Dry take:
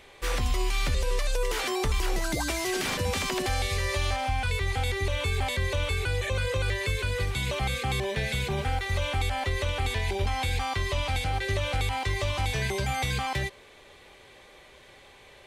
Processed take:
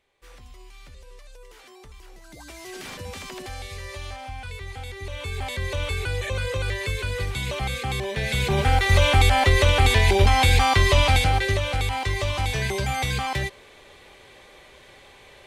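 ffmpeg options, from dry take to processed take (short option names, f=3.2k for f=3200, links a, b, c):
-af "volume=11dB,afade=t=in:st=2.23:d=0.62:silence=0.266073,afade=t=in:st=4.96:d=0.89:silence=0.354813,afade=t=in:st=8.14:d=0.81:silence=0.316228,afade=t=out:st=11.04:d=0.6:silence=0.398107"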